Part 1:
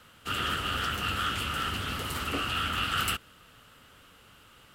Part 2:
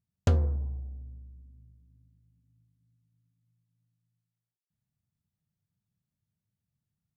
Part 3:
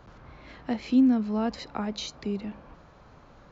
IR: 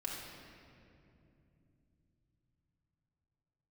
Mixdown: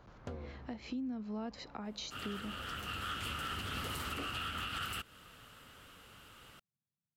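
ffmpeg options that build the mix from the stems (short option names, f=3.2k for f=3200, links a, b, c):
-filter_complex "[0:a]adelay=1850,volume=-1dB[a];[1:a]highpass=170,highshelf=f=4.9k:g=-10,volume=-7dB[b];[2:a]acompressor=threshold=-31dB:ratio=5,volume=-6.5dB,asplit=2[c][d];[d]apad=whole_len=290847[e];[a][e]sidechaincompress=threshold=-54dB:ratio=4:attack=16:release=1060[f];[f][b][c]amix=inputs=3:normalize=0,alimiter=level_in=6dB:limit=-24dB:level=0:latency=1:release=183,volume=-6dB"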